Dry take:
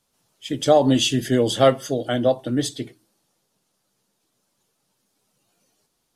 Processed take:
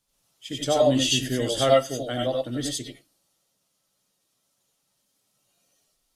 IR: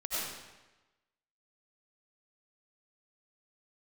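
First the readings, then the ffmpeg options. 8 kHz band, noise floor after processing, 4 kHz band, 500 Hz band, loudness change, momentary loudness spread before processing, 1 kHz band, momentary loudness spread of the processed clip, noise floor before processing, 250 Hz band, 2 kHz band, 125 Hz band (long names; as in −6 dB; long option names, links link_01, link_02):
+0.5 dB, −74 dBFS, −0.5 dB, −3.5 dB, −3.5 dB, 16 LU, −4.0 dB, 12 LU, −73 dBFS, −6.0 dB, −2.0 dB, −5.0 dB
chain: -filter_complex "[0:a]equalizer=frequency=490:width=0.3:gain=-5[link_01];[1:a]atrim=start_sample=2205,atrim=end_sample=4410[link_02];[link_01][link_02]afir=irnorm=-1:irlink=0"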